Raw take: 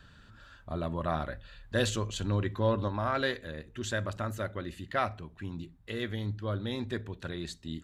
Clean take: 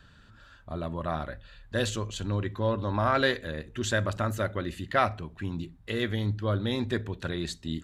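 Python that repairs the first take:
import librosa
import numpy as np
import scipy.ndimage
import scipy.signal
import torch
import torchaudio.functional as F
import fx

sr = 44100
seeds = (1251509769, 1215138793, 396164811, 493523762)

y = fx.fix_level(x, sr, at_s=2.88, step_db=5.5)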